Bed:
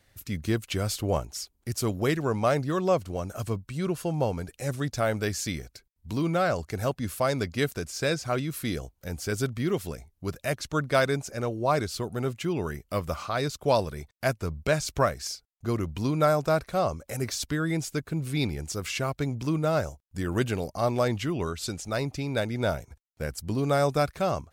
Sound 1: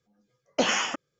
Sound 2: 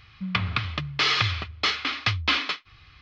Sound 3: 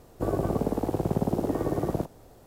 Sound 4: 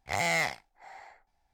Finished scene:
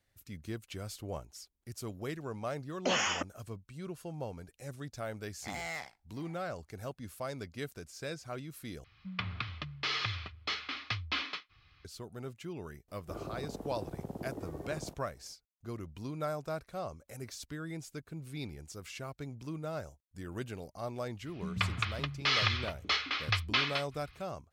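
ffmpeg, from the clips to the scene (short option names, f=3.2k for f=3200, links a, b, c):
-filter_complex "[2:a]asplit=2[a][b];[0:a]volume=-13.5dB[c];[1:a]alimiter=limit=-17.5dB:level=0:latency=1:release=28[d];[b]acrossover=split=310[e][f];[f]adelay=50[g];[e][g]amix=inputs=2:normalize=0[h];[c]asplit=2[i][j];[i]atrim=end=8.844[k];[a]atrim=end=3.01,asetpts=PTS-STARTPTS,volume=-11.5dB[l];[j]atrim=start=11.846[m];[d]atrim=end=1.19,asetpts=PTS-STARTPTS,volume=-3.5dB,afade=t=in:d=0.004:c=hsin,afade=t=out:st=1.186:d=0.004:c=hsin,adelay=2270[n];[4:a]atrim=end=1.53,asetpts=PTS-STARTPTS,volume=-12dB,afade=t=in:d=0.004:c=hsin,afade=t=out:st=1.526:d=0.004:c=hsin,adelay=5350[o];[3:a]atrim=end=2.46,asetpts=PTS-STARTPTS,volume=-15.5dB,afade=t=in:d=0.004:c=hsin,afade=t=out:st=2.456:d=0.004:c=hsin,adelay=12880[p];[h]atrim=end=3.01,asetpts=PTS-STARTPTS,volume=-6.5dB,afade=t=in:d=0.004:c=hsin,afade=t=out:st=3.006:d=0.004:c=hsin,adelay=21210[q];[k][l]acrossfade=d=0.004:c1=hsin:c2=hsin[r];[r][m]acrossfade=d=0.004:c1=hsin:c2=hsin[s];[s][n][o][p][q]amix=inputs=5:normalize=0"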